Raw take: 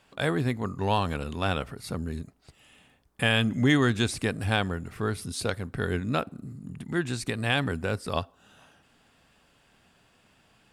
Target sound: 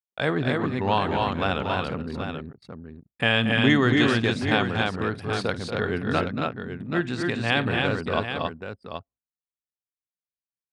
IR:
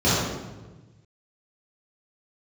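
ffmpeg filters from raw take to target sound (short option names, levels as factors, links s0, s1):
-af "anlmdn=1,lowpass=4300,agate=range=0.0224:threshold=0.00631:ratio=3:detection=peak,highpass=f=150:p=1,aecho=1:1:52|232|276|780:0.126|0.335|0.708|0.376,volume=1.41"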